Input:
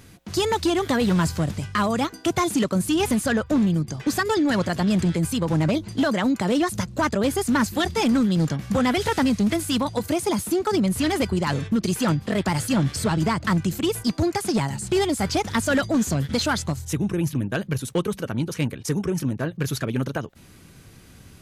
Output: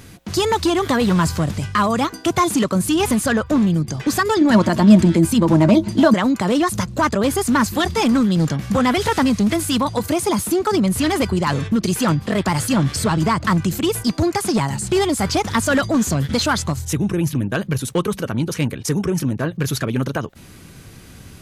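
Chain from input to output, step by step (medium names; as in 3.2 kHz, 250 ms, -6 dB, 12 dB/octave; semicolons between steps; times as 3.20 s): dynamic bell 1.1 kHz, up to +5 dB, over -40 dBFS, Q 3.2; in parallel at -0.5 dB: peak limiter -23.5 dBFS, peak gain reduction 12.5 dB; 4.41–6.14 s: on the sum: small resonant body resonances 220/330/630/920 Hz, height 11 dB, ringing for 90 ms; trim +1 dB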